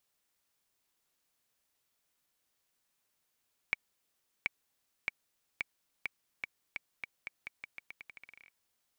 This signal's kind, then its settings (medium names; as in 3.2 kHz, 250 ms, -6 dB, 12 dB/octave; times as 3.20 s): bouncing ball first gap 0.73 s, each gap 0.85, 2.28 kHz, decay 19 ms -15 dBFS